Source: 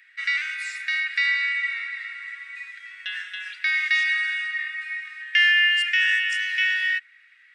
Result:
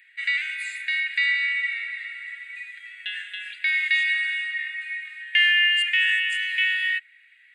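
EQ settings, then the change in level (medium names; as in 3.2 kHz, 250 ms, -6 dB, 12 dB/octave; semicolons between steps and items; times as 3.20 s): high-pass 1.3 kHz 12 dB/octave; peaking EQ 7.2 kHz +7 dB 1.7 oct; static phaser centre 2.4 kHz, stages 4; 0.0 dB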